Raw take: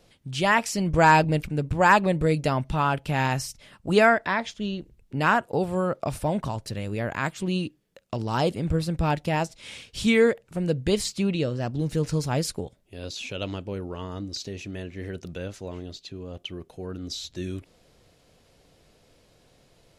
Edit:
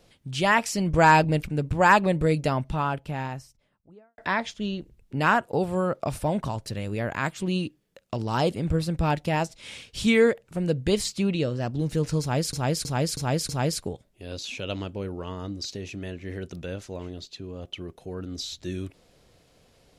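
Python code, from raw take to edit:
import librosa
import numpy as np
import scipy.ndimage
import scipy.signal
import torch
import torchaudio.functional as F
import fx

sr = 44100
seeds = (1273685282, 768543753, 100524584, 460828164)

y = fx.studio_fade_out(x, sr, start_s=2.22, length_s=1.96)
y = fx.edit(y, sr, fx.repeat(start_s=12.21, length_s=0.32, count=5), tone=tone)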